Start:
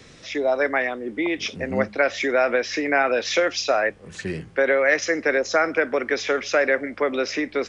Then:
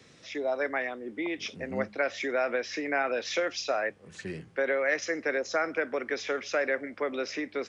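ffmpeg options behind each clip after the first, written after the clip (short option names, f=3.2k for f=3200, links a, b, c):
-af "highpass=88,volume=-8.5dB"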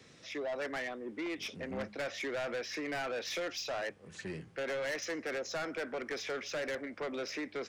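-af "asoftclip=type=tanh:threshold=-31dB,volume=-2dB"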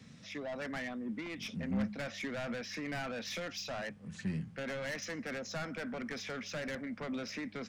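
-af "lowshelf=f=280:t=q:w=3:g=7.5,volume=-2dB"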